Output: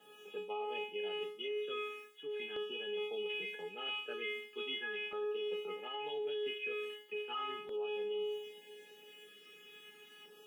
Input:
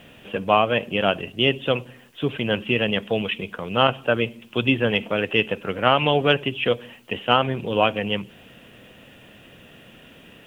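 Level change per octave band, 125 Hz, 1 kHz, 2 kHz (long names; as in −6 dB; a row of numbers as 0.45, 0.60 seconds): below −40 dB, −21.5 dB, −17.5 dB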